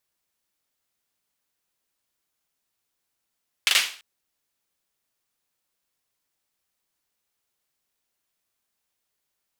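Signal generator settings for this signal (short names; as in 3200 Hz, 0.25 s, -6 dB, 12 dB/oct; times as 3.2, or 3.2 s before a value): hand clap length 0.34 s, bursts 3, apart 40 ms, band 2800 Hz, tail 0.41 s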